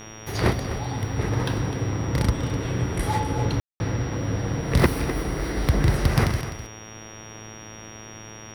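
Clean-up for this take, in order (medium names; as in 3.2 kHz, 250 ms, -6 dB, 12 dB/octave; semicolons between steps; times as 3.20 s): de-hum 109.3 Hz, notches 34; band-stop 5.7 kHz, Q 30; room tone fill 3.60–3.80 s; inverse comb 254 ms -12 dB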